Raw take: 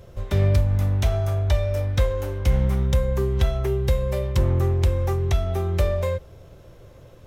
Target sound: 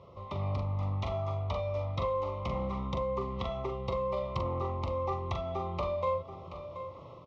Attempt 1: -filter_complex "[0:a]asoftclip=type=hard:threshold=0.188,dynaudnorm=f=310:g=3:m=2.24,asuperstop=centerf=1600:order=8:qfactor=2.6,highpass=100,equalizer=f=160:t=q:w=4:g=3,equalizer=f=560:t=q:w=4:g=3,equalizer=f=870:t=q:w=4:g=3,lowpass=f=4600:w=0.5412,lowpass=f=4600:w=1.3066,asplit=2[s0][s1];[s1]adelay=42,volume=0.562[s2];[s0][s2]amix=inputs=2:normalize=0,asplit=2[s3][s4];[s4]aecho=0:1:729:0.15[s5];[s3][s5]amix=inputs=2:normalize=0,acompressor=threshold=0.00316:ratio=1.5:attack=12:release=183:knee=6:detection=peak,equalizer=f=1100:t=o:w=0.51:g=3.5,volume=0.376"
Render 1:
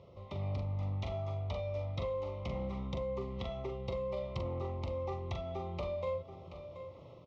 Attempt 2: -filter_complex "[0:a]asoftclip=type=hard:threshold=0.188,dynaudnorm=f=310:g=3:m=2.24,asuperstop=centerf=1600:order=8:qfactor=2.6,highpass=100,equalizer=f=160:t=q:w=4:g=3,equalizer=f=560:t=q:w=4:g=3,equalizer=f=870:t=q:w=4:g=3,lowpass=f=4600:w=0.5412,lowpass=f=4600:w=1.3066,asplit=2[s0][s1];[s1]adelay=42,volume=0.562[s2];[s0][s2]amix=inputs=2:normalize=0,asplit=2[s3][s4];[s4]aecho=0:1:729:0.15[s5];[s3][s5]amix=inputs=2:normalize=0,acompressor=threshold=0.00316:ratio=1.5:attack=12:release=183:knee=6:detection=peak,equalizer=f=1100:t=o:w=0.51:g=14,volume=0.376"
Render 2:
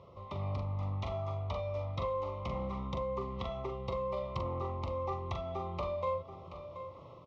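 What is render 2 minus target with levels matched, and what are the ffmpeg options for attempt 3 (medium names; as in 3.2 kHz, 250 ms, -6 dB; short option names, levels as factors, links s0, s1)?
compression: peak gain reduction +3.5 dB
-filter_complex "[0:a]asoftclip=type=hard:threshold=0.188,dynaudnorm=f=310:g=3:m=2.24,asuperstop=centerf=1600:order=8:qfactor=2.6,highpass=100,equalizer=f=160:t=q:w=4:g=3,equalizer=f=560:t=q:w=4:g=3,equalizer=f=870:t=q:w=4:g=3,lowpass=f=4600:w=0.5412,lowpass=f=4600:w=1.3066,asplit=2[s0][s1];[s1]adelay=42,volume=0.562[s2];[s0][s2]amix=inputs=2:normalize=0,asplit=2[s3][s4];[s4]aecho=0:1:729:0.15[s5];[s3][s5]amix=inputs=2:normalize=0,acompressor=threshold=0.01:ratio=1.5:attack=12:release=183:knee=6:detection=peak,equalizer=f=1100:t=o:w=0.51:g=14,volume=0.376"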